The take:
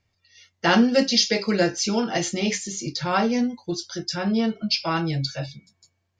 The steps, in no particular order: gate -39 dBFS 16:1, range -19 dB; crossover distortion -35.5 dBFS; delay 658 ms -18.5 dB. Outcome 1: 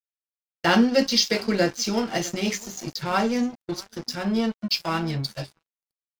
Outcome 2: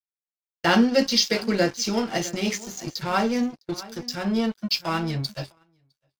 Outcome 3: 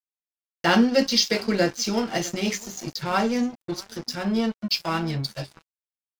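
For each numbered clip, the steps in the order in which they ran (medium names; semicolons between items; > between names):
delay > crossover distortion > gate; crossover distortion > delay > gate; delay > gate > crossover distortion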